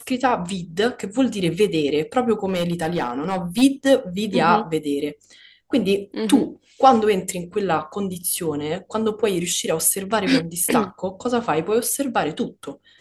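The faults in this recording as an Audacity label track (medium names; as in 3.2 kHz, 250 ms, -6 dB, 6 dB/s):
2.450000	3.630000	clipped -16.5 dBFS
10.640000	10.640000	dropout 3.6 ms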